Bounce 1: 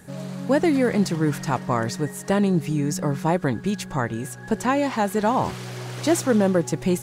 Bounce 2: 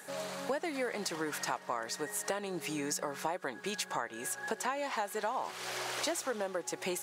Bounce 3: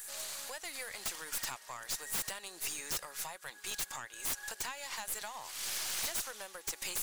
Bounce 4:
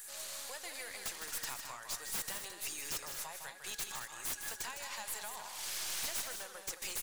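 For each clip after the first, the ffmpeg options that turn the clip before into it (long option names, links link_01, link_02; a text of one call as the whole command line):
ffmpeg -i in.wav -af "highpass=580,acompressor=threshold=-35dB:ratio=6,volume=2.5dB" out.wav
ffmpeg -i in.wav -af "aderivative,aeval=exprs='0.0841*(cos(1*acos(clip(val(0)/0.0841,-1,1)))-cos(1*PI/2))+0.0168*(cos(6*acos(clip(val(0)/0.0841,-1,1)))-cos(6*PI/2))':channel_layout=same,aeval=exprs='0.02*(abs(mod(val(0)/0.02+3,4)-2)-1)':channel_layout=same,volume=7.5dB" out.wav
ffmpeg -i in.wav -filter_complex "[0:a]flanger=delay=5.5:depth=8.1:regen=-86:speed=0.46:shape=sinusoidal,asplit=2[link_01][link_02];[link_02]aecho=0:1:157.4|218.7:0.447|0.355[link_03];[link_01][link_03]amix=inputs=2:normalize=0,volume=1.5dB" out.wav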